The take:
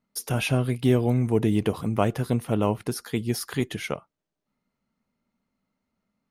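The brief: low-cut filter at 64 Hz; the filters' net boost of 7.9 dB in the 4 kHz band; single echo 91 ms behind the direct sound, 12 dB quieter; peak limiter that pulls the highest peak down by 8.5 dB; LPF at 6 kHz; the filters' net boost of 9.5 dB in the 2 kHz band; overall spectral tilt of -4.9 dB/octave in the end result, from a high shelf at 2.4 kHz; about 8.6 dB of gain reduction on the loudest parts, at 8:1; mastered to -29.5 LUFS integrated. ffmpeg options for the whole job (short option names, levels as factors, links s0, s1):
-af "highpass=64,lowpass=6000,equalizer=f=2000:t=o:g=8.5,highshelf=f=2400:g=4.5,equalizer=f=4000:t=o:g=4,acompressor=threshold=0.0631:ratio=8,alimiter=limit=0.112:level=0:latency=1,aecho=1:1:91:0.251,volume=1.26"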